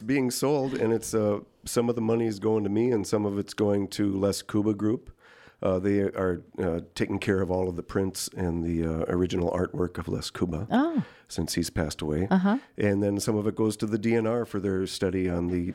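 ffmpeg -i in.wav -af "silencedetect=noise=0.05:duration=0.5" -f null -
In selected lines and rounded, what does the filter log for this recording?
silence_start: 4.95
silence_end: 5.63 | silence_duration: 0.68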